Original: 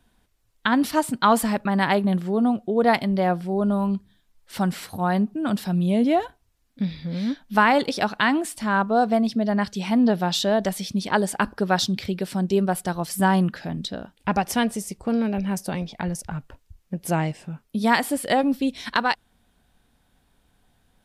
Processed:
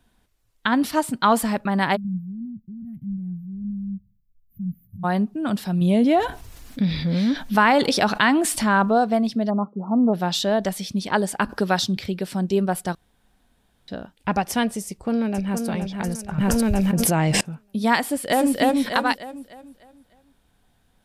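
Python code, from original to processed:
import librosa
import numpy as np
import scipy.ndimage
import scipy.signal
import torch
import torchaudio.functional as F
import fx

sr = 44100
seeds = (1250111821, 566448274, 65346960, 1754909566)

y = fx.cheby2_bandstop(x, sr, low_hz=440.0, high_hz=9000.0, order=4, stop_db=50, at=(1.95, 5.03), fade=0.02)
y = fx.env_flatten(y, sr, amount_pct=50, at=(5.81, 8.98))
y = fx.brickwall_bandpass(y, sr, low_hz=160.0, high_hz=1400.0, at=(9.49, 10.13), fade=0.02)
y = fx.band_squash(y, sr, depth_pct=40, at=(11.49, 11.97))
y = fx.echo_throw(y, sr, start_s=14.87, length_s=0.8, ms=470, feedback_pct=40, wet_db=-5.5)
y = fx.env_flatten(y, sr, amount_pct=100, at=(16.38, 17.41))
y = fx.echo_throw(y, sr, start_s=18.01, length_s=0.56, ms=300, feedback_pct=40, wet_db=0.0)
y = fx.edit(y, sr, fx.room_tone_fill(start_s=12.95, length_s=0.93), tone=tone)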